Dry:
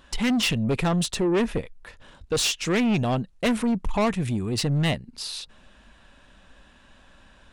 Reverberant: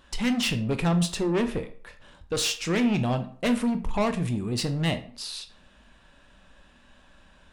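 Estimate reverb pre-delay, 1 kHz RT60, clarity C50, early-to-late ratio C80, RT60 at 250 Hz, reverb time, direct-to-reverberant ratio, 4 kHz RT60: 13 ms, 0.50 s, 13.0 dB, 16.5 dB, 0.40 s, 0.50 s, 8.0 dB, 0.35 s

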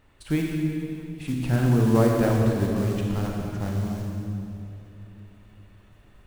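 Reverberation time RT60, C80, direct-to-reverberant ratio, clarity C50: 2.8 s, 1.5 dB, -1.0 dB, 0.0 dB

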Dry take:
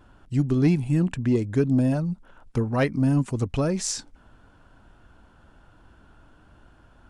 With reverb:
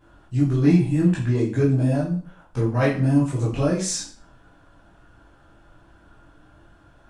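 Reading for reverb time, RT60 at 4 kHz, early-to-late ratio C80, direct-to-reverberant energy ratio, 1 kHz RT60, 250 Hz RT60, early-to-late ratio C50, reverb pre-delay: 0.45 s, 0.40 s, 10.5 dB, -7.5 dB, 0.40 s, 0.40 s, 5.5 dB, 11 ms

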